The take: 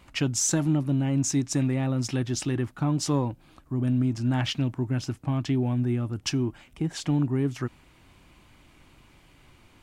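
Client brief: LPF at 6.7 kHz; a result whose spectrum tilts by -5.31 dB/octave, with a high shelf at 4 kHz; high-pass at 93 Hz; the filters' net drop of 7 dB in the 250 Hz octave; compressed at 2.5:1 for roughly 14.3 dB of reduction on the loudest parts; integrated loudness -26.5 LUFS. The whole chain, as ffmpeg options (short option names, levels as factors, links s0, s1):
-af "highpass=93,lowpass=6700,equalizer=f=250:t=o:g=-8.5,highshelf=f=4000:g=-9,acompressor=threshold=0.00447:ratio=2.5,volume=8.41"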